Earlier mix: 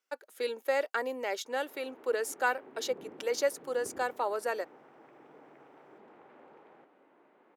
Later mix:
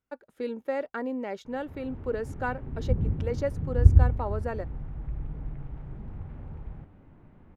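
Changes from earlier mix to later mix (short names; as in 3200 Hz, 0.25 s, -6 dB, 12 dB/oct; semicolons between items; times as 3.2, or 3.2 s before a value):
speech: add LPF 1100 Hz 6 dB/oct; master: remove HPF 360 Hz 24 dB/oct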